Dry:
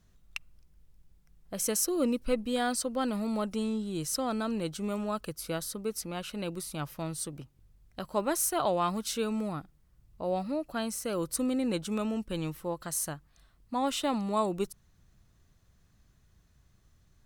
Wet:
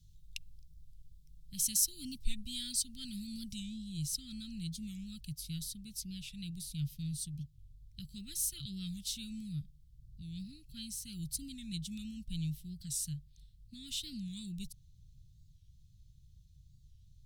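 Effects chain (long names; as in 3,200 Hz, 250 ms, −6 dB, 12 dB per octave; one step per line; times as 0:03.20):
elliptic band-stop filter 140–3,600 Hz, stop band 70 dB
high-shelf EQ 3,000 Hz −5 dB, from 0:03.61 −10.5 dB
wow of a warped record 45 rpm, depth 160 cents
level +5.5 dB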